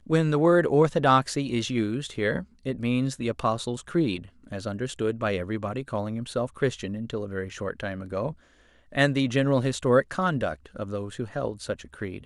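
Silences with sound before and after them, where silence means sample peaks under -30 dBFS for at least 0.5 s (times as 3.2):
8.31–8.95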